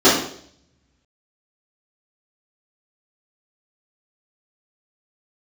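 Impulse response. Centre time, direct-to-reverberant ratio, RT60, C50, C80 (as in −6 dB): 41 ms, −13.5 dB, 0.60 s, 4.5 dB, 8.0 dB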